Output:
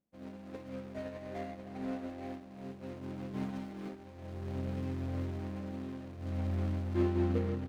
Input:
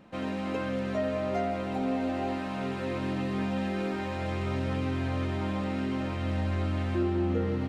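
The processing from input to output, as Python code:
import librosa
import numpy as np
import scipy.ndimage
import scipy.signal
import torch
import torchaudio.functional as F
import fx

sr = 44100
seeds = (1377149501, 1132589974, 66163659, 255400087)

y = scipy.ndimage.median_filter(x, 41, mode='constant')
y = fx.comb(y, sr, ms=6.7, depth=0.72, at=(3.33, 3.89))
y = fx.echo_split(y, sr, split_hz=330.0, low_ms=157, high_ms=315, feedback_pct=52, wet_db=-16.0)
y = fx.upward_expand(y, sr, threshold_db=-46.0, expansion=2.5)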